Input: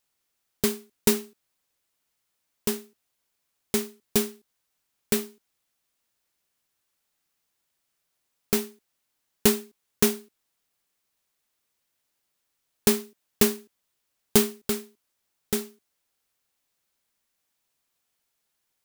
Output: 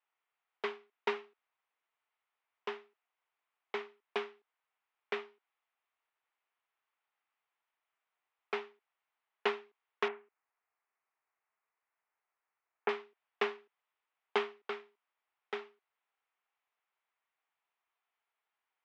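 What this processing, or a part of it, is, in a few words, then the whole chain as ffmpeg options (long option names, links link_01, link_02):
phone earpiece: -filter_complex "[0:a]asettb=1/sr,asplit=3[link_01][link_02][link_03];[link_01]atrim=end=10.084[link_04];[link_02]atrim=start=10.08:end=12.89,asetpts=PTS-STARTPTS,afade=type=in:duration=0.004:curve=qsin,afade=type=out:start_time=2.806:duration=0.004:curve=qsin,lowpass=frequency=2400:width=0.5412,lowpass=frequency=2400:width=1.3066[link_05];[link_03]atrim=start=12.886[link_06];[link_04][link_05]acrossfade=duration=0.004:curve1=hsin:curve2=qsin[link_07];[link_07][link_06]acrossfade=duration=0.004:curve1=qsin:curve2=hsin,highpass=410,equalizer=frequency=560:width_type=q:width=4:gain=-9,equalizer=frequency=1600:width_type=q:width=4:gain=-4,equalizer=frequency=4300:width_type=q:width=4:gain=-4,lowpass=frequency=4300:width=0.5412,lowpass=frequency=4300:width=1.3066,acrossover=split=450 2500:gain=0.0891 1 0.0891[link_08][link_09][link_10];[link_08][link_09][link_10]amix=inputs=3:normalize=0,volume=1dB"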